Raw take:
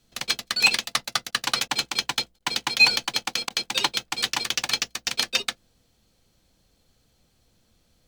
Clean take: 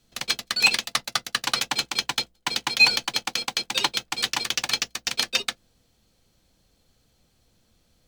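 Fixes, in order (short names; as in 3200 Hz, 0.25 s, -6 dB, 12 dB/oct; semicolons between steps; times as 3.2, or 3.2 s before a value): interpolate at 1.31/1.68/2.39/3.49, 12 ms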